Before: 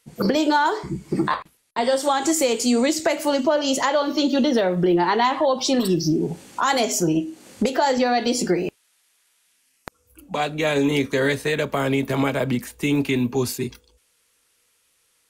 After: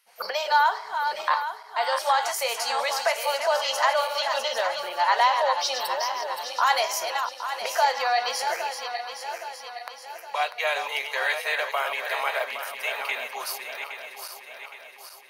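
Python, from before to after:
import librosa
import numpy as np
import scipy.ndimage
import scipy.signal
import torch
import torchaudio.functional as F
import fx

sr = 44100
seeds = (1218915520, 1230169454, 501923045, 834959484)

y = fx.reverse_delay_fb(x, sr, ms=408, feedback_pct=70, wet_db=-7.0)
y = scipy.signal.sosfilt(scipy.signal.cheby2(4, 40, 330.0, 'highpass', fs=sr, output='sos'), y)
y = fx.peak_eq(y, sr, hz=7500.0, db=-15.0, octaves=0.36)
y = fx.notch(y, sr, hz=3500.0, q=12.0)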